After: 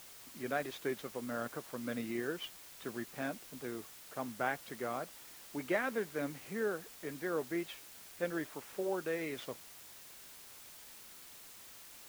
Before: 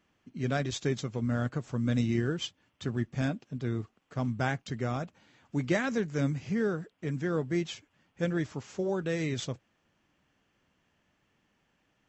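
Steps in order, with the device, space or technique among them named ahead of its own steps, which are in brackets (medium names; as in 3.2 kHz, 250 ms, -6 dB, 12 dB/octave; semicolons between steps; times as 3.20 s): wax cylinder (band-pass 390–2400 Hz; wow and flutter; white noise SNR 13 dB); trim -2 dB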